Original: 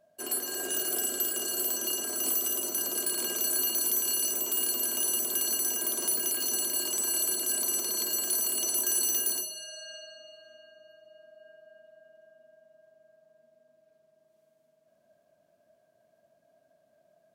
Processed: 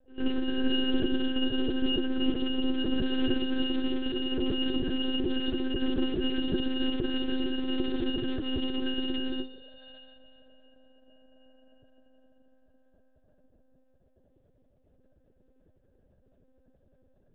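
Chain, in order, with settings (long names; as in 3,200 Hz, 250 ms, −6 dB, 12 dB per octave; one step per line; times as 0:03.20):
low shelf with overshoot 500 Hz +13.5 dB, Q 3
echo ahead of the sound 112 ms −21.5 dB
one-pitch LPC vocoder at 8 kHz 260 Hz
level −2 dB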